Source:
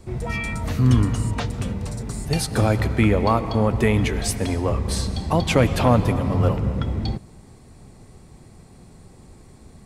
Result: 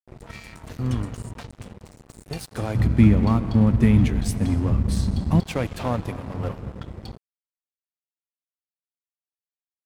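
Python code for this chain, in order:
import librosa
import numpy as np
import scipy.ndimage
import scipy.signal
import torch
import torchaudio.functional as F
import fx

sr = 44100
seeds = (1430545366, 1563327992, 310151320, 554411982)

y = fx.low_shelf_res(x, sr, hz=330.0, db=10.5, q=1.5, at=(2.75, 5.4))
y = np.sign(y) * np.maximum(np.abs(y) - 10.0 ** (-27.0 / 20.0), 0.0)
y = F.gain(torch.from_numpy(y), -7.0).numpy()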